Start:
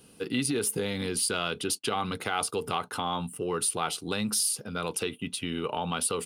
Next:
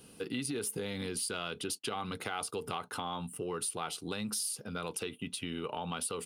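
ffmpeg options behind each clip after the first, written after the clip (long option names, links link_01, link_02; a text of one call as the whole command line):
ffmpeg -i in.wav -af "acompressor=threshold=-39dB:ratio=2" out.wav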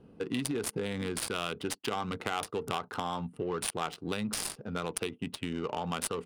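ffmpeg -i in.wav -af "highshelf=frequency=8300:gain=10.5,aeval=exprs='0.15*(cos(1*acos(clip(val(0)/0.15,-1,1)))-cos(1*PI/2))+0.00376*(cos(7*acos(clip(val(0)/0.15,-1,1)))-cos(7*PI/2))':channel_layout=same,adynamicsmooth=sensitivity=6.5:basefreq=950,volume=5dB" out.wav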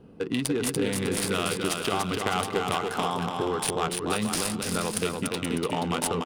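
ffmpeg -i in.wav -af "aecho=1:1:290|478.5|601|680.7|732.4:0.631|0.398|0.251|0.158|0.1,volume=5dB" out.wav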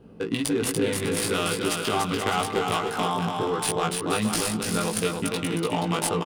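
ffmpeg -i in.wav -filter_complex "[0:a]asplit=2[link_01][link_02];[link_02]adelay=18,volume=-2.5dB[link_03];[link_01][link_03]amix=inputs=2:normalize=0" out.wav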